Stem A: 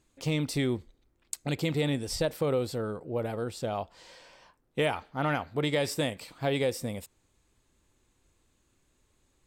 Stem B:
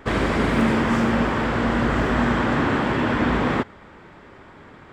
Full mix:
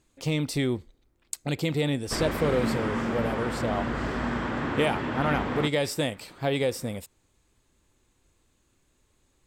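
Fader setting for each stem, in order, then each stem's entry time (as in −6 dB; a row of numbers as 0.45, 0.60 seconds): +2.0, −9.0 decibels; 0.00, 2.05 seconds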